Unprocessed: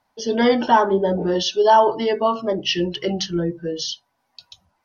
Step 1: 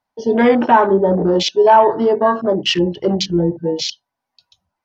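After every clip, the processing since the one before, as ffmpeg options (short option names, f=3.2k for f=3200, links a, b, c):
-filter_complex "[0:a]afwtdn=0.0398,asplit=2[a][b];[b]alimiter=limit=-15dB:level=0:latency=1:release=135,volume=0dB[c];[a][c]amix=inputs=2:normalize=0,volume=1dB"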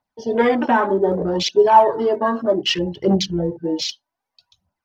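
-af "aphaser=in_gain=1:out_gain=1:delay=4.1:decay=0.52:speed=0.64:type=triangular,volume=-4dB"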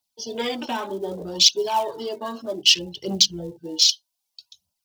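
-filter_complex "[0:a]acrossover=split=160[a][b];[b]aexciter=amount=10.7:drive=4.7:freq=2.7k[c];[a][c]amix=inputs=2:normalize=0,acrusher=bits=9:mode=log:mix=0:aa=0.000001,volume=-11.5dB"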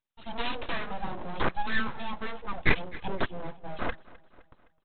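-af "aresample=8000,aeval=exprs='abs(val(0))':c=same,aresample=44100,aecho=1:1:258|516|774|1032:0.0891|0.0463|0.0241|0.0125,volume=-2dB"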